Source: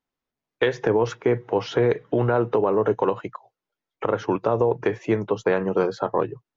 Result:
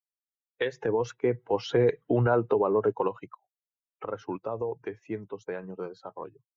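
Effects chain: per-bin expansion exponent 1.5; Doppler pass-by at 2.15, 6 m/s, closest 5.4 m

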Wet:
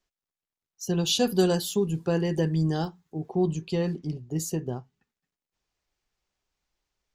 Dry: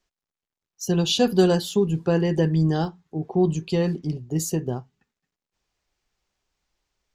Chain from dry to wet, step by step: 1.03–3.47 high shelf 7500 Hz +12 dB; gain -4.5 dB

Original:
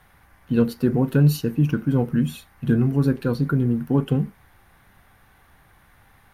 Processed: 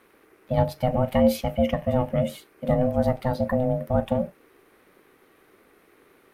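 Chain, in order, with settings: 0.78–2.28 bell 2500 Hz +11 dB 0.31 oct; ring modulator 380 Hz

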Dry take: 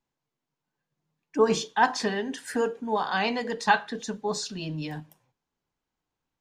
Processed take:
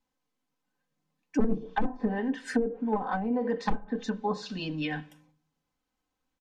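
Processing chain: one-sided fold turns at -22 dBFS; on a send at -16.5 dB: reverb RT60 0.60 s, pre-delay 3 ms; on the sum: spectral gain 4.81–5.21, 1300–3800 Hz +7 dB; wrapped overs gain 11 dB; comb 3.9 ms, depth 63%; treble ducked by the level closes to 350 Hz, closed at -20 dBFS

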